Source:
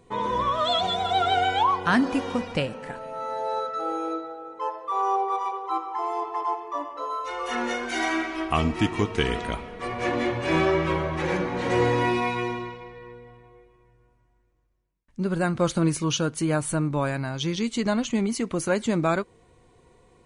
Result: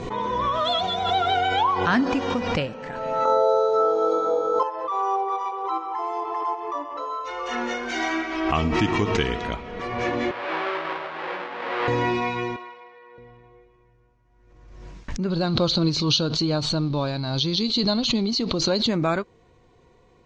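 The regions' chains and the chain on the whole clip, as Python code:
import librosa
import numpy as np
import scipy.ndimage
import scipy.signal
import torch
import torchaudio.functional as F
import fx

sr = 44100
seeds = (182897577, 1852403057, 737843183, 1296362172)

y = fx.chain(x, sr, fx.band_shelf(hz=2100.0, db=-14.5, octaves=1.1),
    fx.room_flutter(wall_m=3.9, rt60_s=1.4),
    fx.band_squash(depth_pct=100), at=(3.25, 4.63))
y = fx.chain(y, sr, fx.halfwave_hold(),
    fx.highpass(hz=790.0, slope=12),
    fx.air_absorb(metres=480.0), at=(10.31, 11.88))
y = fx.chain(y, sr, fx.highpass(hz=640.0, slope=12),
    fx.high_shelf(hz=3000.0, db=-8.5), at=(12.56, 13.18))
y = fx.chain(y, sr, fx.law_mismatch(coded='mu'),
    fx.lowpass_res(hz=4200.0, q=9.4),
    fx.peak_eq(hz=1900.0, db=-11.5, octaves=0.96), at=(15.3, 18.89))
y = scipy.signal.sosfilt(scipy.signal.butter(6, 6700.0, 'lowpass', fs=sr, output='sos'), y)
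y = fx.pre_swell(y, sr, db_per_s=40.0)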